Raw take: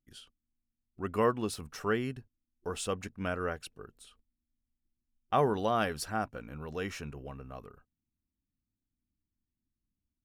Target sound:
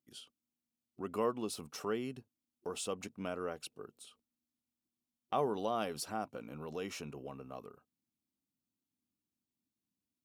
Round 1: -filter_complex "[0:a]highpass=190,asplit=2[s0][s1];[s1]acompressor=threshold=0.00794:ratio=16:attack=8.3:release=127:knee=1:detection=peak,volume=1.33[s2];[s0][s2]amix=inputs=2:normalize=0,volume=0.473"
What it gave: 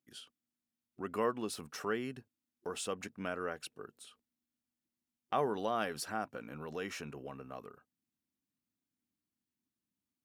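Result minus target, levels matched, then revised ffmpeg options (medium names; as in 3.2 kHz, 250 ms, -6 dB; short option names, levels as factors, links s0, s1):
2 kHz band +5.5 dB
-filter_complex "[0:a]highpass=190,equalizer=f=1700:t=o:w=0.59:g=-10.5,asplit=2[s0][s1];[s1]acompressor=threshold=0.00794:ratio=16:attack=8.3:release=127:knee=1:detection=peak,volume=1.33[s2];[s0][s2]amix=inputs=2:normalize=0,volume=0.473"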